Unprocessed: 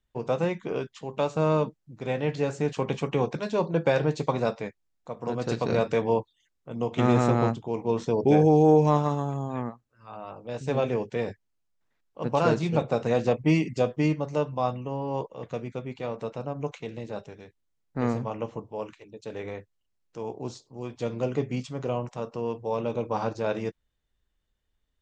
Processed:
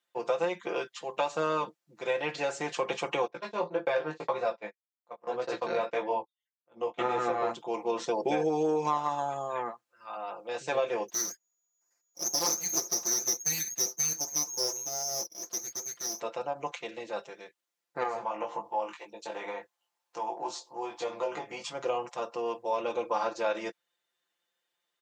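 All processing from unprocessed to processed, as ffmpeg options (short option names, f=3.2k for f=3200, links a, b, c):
-filter_complex "[0:a]asettb=1/sr,asplit=3[a][b][c];[a]atrim=end=3.274[d];[b]atrim=start=3.27:end=7.51,asetpts=PTS-STARTPTS,afade=t=in:d=0.004:c=qsin,afade=t=out:st=4.236:d=0.004:c=qsin,lowpass=f=2.8k:p=1,agate=range=-21dB:threshold=-34dB:ratio=16:release=100:detection=peak,flanger=delay=15:depth=3.9:speed=1.8[e];[c]atrim=start=7.506[f];[d][e]acrossfade=d=0.004:c1=hsin:c2=qsin[g];[g][f]acrossfade=d=0.004:c1=qsin:c2=hsin,asettb=1/sr,asplit=3[h][i][j];[h]atrim=end=11.084[k];[i]atrim=start=11.08:end=16.2,asetpts=PTS-STARTPTS,afade=t=in:d=0.004:c=qsin,afade=t=out:st=5.116:d=0.004:c=qsin,highshelf=f=2.4k:g=-11.5,lowpass=f=2.9k:t=q:w=0.5098,lowpass=f=2.9k:t=q:w=0.6013,lowpass=f=2.9k:t=q:w=0.9,lowpass=f=2.9k:t=q:w=2.563,afreqshift=-3400,aeval=exprs='abs(val(0))':c=same[l];[j]atrim=start=16.196[m];[k][l]acrossfade=d=0.004:c1=hsin:c2=qsin[n];[n][m]acrossfade=d=0.004:c1=qsin:c2=hsin,asettb=1/sr,asplit=3[o][p][q];[o]atrim=end=18.034[r];[p]atrim=start=18.03:end=21.73,asetpts=PTS-STARTPTS,afade=t=in:d=0.004:c=qsin,afade=t=out:st=3.696:d=0.004:c=qsin,equalizer=f=880:w=1.9:g=11,acompressor=threshold=-35dB:ratio=2:attack=3.2:release=140:knee=1:detection=peak,asplit=2[s][t];[t]adelay=19,volume=-3dB[u];[s][u]amix=inputs=2:normalize=0,atrim=end_sample=163170[v];[q]atrim=start=21.726[w];[r][v]acrossfade=d=0.004:c1=hsin:c2=qsin[x];[x][w]acrossfade=d=0.004:c1=qsin:c2=hsin,highpass=550,aecho=1:1:5.8:0.83,acompressor=threshold=-27dB:ratio=4,volume=2dB"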